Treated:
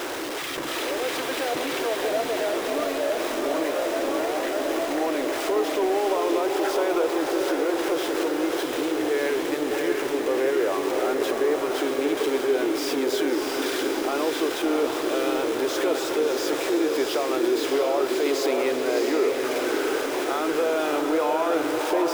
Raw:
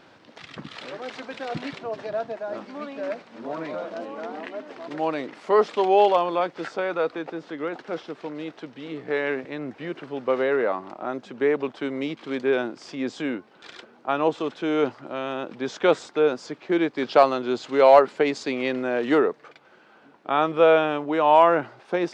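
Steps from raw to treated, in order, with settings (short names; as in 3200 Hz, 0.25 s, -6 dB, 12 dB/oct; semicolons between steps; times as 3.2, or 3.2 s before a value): zero-crossing step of -24 dBFS; resonant low shelf 260 Hz -9 dB, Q 3; notch 4400 Hz, Q 23; in parallel at +1.5 dB: compressor, threshold -24 dBFS, peak gain reduction 16.5 dB; on the sum: limiter -8.5 dBFS, peak gain reduction 8.5 dB; on a send: diffused feedback echo 0.655 s, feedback 58%, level -3 dB; on the sum: gain -9 dB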